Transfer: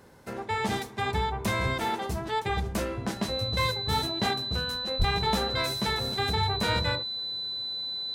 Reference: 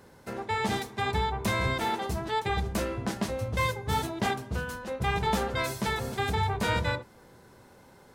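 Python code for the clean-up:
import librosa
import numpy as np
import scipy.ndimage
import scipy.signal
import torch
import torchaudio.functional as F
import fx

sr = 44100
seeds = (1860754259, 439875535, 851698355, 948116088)

y = fx.fix_declip(x, sr, threshold_db=-16.0)
y = fx.notch(y, sr, hz=4000.0, q=30.0)
y = fx.fix_deplosive(y, sr, at_s=(4.98,))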